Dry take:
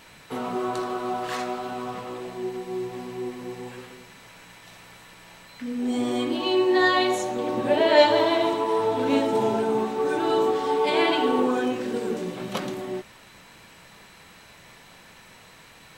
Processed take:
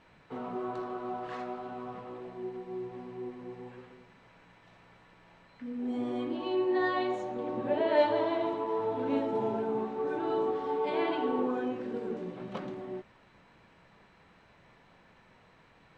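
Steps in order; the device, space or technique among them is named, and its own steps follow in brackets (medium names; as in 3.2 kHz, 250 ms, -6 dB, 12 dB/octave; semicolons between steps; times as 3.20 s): through cloth (low-pass 6.9 kHz 12 dB/octave; treble shelf 3.3 kHz -18 dB); trim -7.5 dB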